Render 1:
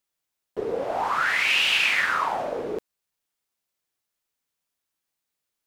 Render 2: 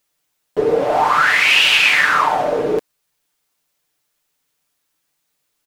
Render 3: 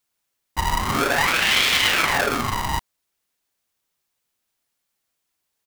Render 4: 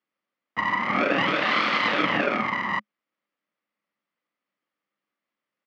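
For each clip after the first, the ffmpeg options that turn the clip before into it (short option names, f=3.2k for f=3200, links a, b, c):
-filter_complex "[0:a]aecho=1:1:6.7:0.5,asplit=2[a][b];[b]alimiter=limit=-17.5dB:level=0:latency=1:release=490,volume=1.5dB[c];[a][c]amix=inputs=2:normalize=0,volume=4dB"
-af "aeval=exprs='val(0)*sgn(sin(2*PI*490*n/s))':c=same,volume=-6dB"
-af "aeval=exprs='val(0)*sin(2*PI*1000*n/s)':c=same,highpass=f=130:w=0.5412,highpass=f=130:w=1.3066,equalizer=f=210:t=q:w=4:g=10,equalizer=f=300:t=q:w=4:g=8,equalizer=f=550:t=q:w=4:g=9,equalizer=f=1.2k:t=q:w=4:g=9,equalizer=f=2k:t=q:w=4:g=7,equalizer=f=3.9k:t=q:w=4:g=-6,lowpass=f=4.1k:w=0.5412,lowpass=f=4.1k:w=1.3066,volume=-4dB"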